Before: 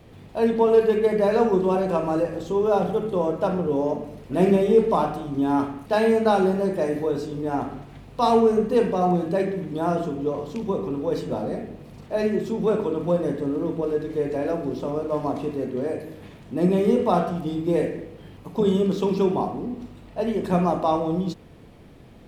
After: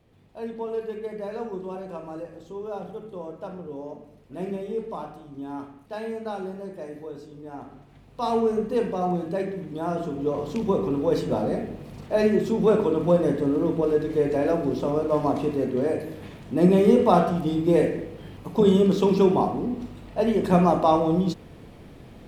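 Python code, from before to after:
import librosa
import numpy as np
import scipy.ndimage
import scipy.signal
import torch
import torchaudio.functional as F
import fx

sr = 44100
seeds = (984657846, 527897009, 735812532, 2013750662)

y = fx.gain(x, sr, db=fx.line((7.55, -13.0), (8.47, -4.5), (9.9, -4.5), (10.52, 2.5)))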